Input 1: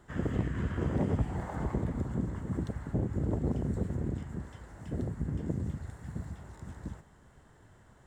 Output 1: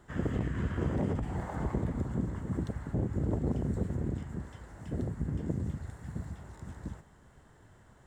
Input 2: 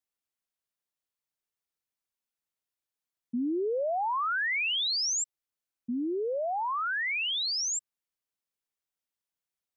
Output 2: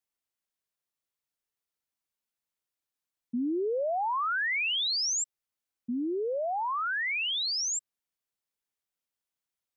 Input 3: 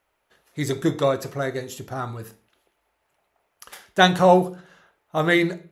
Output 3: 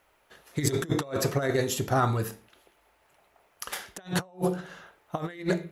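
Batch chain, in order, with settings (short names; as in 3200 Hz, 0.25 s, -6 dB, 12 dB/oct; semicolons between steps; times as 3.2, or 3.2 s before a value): negative-ratio compressor -28 dBFS, ratio -0.5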